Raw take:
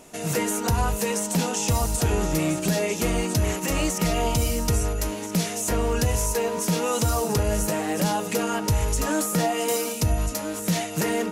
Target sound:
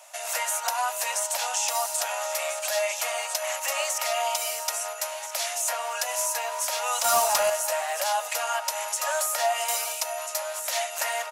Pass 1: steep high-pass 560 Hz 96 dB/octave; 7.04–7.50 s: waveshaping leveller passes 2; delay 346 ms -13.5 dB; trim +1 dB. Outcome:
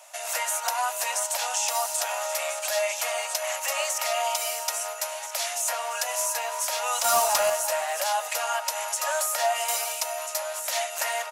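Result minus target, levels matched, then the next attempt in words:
echo-to-direct +6.5 dB
steep high-pass 560 Hz 96 dB/octave; 7.04–7.50 s: waveshaping leveller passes 2; delay 346 ms -20 dB; trim +1 dB

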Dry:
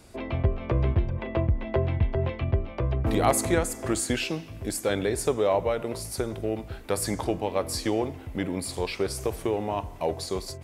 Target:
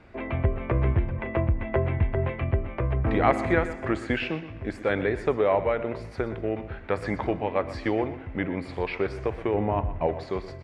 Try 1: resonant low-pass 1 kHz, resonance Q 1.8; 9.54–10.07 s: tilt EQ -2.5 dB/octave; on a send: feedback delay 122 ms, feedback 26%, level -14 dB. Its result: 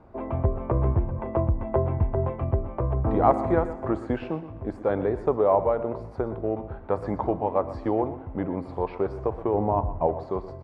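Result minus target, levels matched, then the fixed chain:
2 kHz band -12.5 dB
resonant low-pass 2 kHz, resonance Q 1.8; 9.54–10.07 s: tilt EQ -2.5 dB/octave; on a send: feedback delay 122 ms, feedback 26%, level -14 dB

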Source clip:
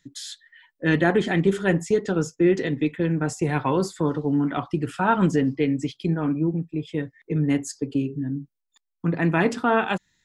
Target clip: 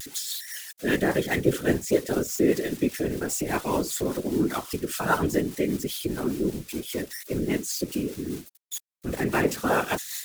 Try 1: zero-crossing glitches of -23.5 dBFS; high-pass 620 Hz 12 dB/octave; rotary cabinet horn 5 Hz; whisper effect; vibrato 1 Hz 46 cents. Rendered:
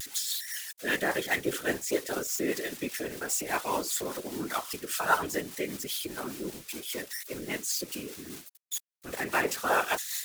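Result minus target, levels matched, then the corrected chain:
250 Hz band -6.5 dB
zero-crossing glitches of -23.5 dBFS; high-pass 230 Hz 12 dB/octave; rotary cabinet horn 5 Hz; whisper effect; vibrato 1 Hz 46 cents

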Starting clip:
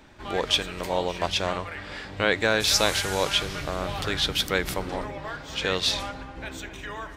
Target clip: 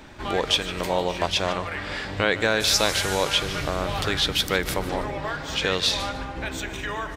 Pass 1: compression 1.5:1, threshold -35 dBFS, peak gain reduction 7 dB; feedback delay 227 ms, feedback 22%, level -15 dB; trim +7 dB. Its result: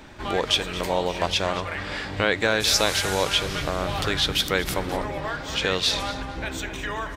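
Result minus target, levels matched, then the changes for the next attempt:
echo 77 ms late
change: feedback delay 150 ms, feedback 22%, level -15 dB

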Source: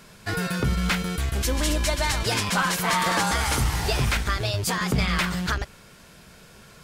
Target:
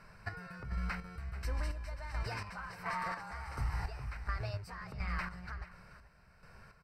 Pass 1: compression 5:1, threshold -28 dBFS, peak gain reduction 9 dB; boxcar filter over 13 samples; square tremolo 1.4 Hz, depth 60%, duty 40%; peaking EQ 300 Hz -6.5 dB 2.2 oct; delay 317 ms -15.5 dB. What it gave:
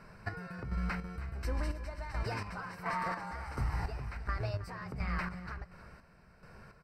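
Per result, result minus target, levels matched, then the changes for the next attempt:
echo 119 ms early; 250 Hz band +4.0 dB
change: delay 436 ms -15.5 dB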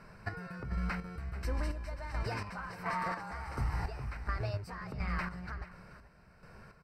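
250 Hz band +3.5 dB
change: peaking EQ 300 Hz -15 dB 2.2 oct

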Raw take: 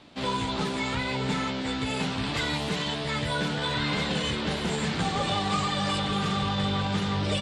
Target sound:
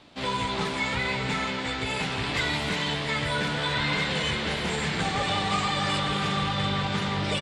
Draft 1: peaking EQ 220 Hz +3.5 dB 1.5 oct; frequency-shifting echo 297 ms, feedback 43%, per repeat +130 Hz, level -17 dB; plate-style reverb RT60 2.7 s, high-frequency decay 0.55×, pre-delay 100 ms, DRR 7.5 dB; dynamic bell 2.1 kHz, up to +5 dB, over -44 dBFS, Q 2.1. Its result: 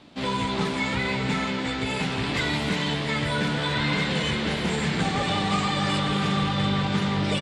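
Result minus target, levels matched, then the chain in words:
250 Hz band +4.0 dB
peaking EQ 220 Hz -3 dB 1.5 oct; frequency-shifting echo 297 ms, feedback 43%, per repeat +130 Hz, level -17 dB; plate-style reverb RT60 2.7 s, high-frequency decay 0.55×, pre-delay 100 ms, DRR 7.5 dB; dynamic bell 2.1 kHz, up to +5 dB, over -44 dBFS, Q 2.1

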